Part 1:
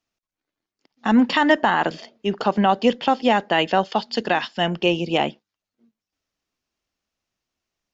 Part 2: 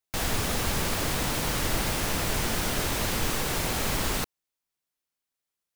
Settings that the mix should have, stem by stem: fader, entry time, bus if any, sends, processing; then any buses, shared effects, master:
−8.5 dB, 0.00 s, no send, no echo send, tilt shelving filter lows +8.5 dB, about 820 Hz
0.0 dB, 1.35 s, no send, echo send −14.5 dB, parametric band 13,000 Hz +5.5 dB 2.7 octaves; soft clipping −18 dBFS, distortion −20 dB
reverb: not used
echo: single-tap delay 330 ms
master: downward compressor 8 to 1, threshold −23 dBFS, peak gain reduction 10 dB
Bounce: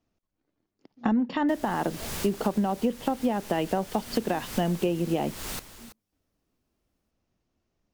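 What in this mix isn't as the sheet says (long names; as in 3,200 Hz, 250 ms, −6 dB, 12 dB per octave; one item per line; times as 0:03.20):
stem 1 −8.5 dB → +3.5 dB
stem 2 0.0 dB → −7.0 dB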